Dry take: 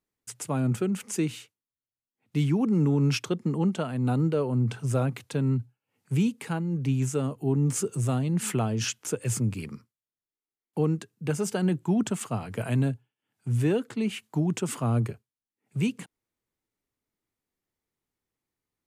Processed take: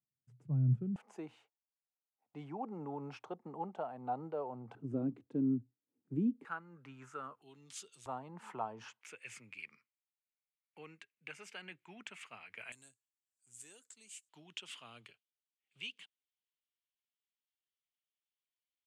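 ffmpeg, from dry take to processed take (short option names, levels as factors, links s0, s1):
-af "asetnsamples=n=441:p=0,asendcmd='0.96 bandpass f 780;4.75 bandpass f 290;6.45 bandpass f 1300;7.42 bandpass f 3600;8.06 bandpass f 920;9.01 bandpass f 2300;12.72 bandpass f 7600;14.29 bandpass f 3100',bandpass=f=140:t=q:w=4.1:csg=0"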